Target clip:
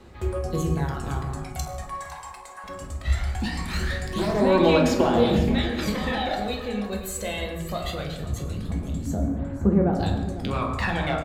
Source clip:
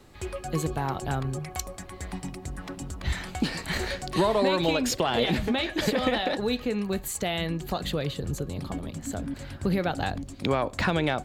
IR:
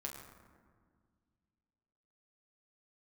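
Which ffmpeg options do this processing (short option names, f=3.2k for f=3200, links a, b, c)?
-filter_complex "[0:a]asettb=1/sr,asplit=3[a][b][c];[a]atrim=end=1.824[d];[b]atrim=start=1.82:end=2.64,asetpts=PTS-STARTPTS,afade=t=in:d=0.004:c=qsin,afade=t=out:st=0.816:d=0.004:c=qsin,highpass=f=860:t=q:w=4.4[e];[c]atrim=start=2.636[f];[d][e]acrossfade=d=0.004:c1=hsin:c2=qsin[g];[g][f]acrossfade=d=0.004:c1=qsin:c2=hsin,asettb=1/sr,asplit=3[h][i][j];[h]atrim=end=3.604[k];[i]atrim=start=3.6:end=4.4,asetpts=PTS-STARTPTS,afade=t=in:d=0.004:c=qsin,afade=t=out:st=0.796:d=0.004:c=qsin,aeval=exprs='0.0944*(abs(mod(val(0)/0.0944+3,4)-2)-1)':c=same[l];[j]atrim=start=4.396[m];[k][l]acrossfade=d=0.004:c1=hsin:c2=qsin[n];[n][m]acrossfade=d=0.004:c1=qsin:c2=hsin,asettb=1/sr,asplit=3[o][p][q];[o]atrim=end=9.144[r];[p]atrim=start=9.14:end=9.93,asetpts=PTS-STARTPTS,afade=t=in:d=0.004:c=qsin,afade=t=out:st=0.786:d=0.004:c=qsin,lowpass=1.1k[s];[q]atrim=start=9.926[t];[r][s]acrossfade=d=0.004:c1=hsin:c2=qsin[u];[u][t]acrossfade=d=0.004:c1=qsin:c2=hsin,aphaser=in_gain=1:out_gain=1:delay=1.9:decay=0.6:speed=0.21:type=sinusoidal,aecho=1:1:504:0.188[v];[1:a]atrim=start_sample=2205,afade=t=out:st=0.33:d=0.01,atrim=end_sample=14994[w];[v][w]afir=irnorm=-1:irlink=0"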